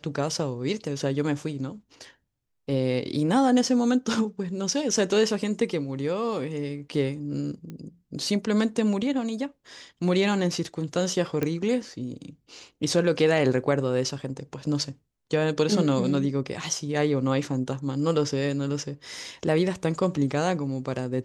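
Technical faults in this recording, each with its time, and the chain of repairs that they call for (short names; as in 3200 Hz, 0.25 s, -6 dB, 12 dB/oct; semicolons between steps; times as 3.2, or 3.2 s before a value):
7.7 pop -26 dBFS
11.43 pop -13 dBFS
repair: de-click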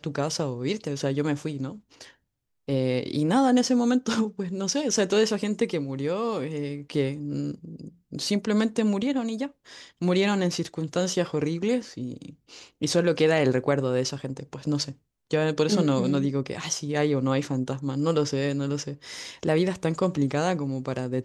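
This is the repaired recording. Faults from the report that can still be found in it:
none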